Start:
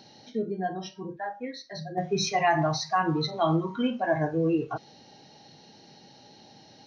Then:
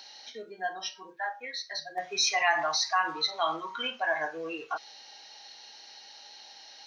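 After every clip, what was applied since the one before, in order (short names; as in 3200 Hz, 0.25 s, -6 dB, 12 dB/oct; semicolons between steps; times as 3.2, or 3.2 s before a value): HPF 1200 Hz 12 dB/oct; in parallel at -1 dB: limiter -28.5 dBFS, peak gain reduction 11.5 dB; on the sum: gain +1.5 dB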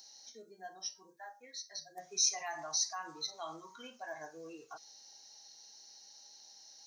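EQ curve 110 Hz 0 dB, 3000 Hz -16 dB, 6300 Hz +8 dB; gain -5 dB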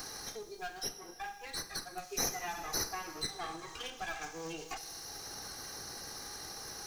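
minimum comb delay 2.5 ms; on a send at -12 dB: reverb RT60 1.4 s, pre-delay 38 ms; on the sum: three-band squash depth 70%; gain +5 dB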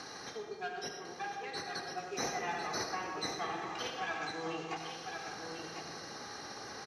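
BPF 130–3800 Hz; on a send: echo 1.05 s -6.5 dB; on the sum: digital reverb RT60 1.8 s, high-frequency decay 0.3×, pre-delay 45 ms, DRR 4 dB; gain +1.5 dB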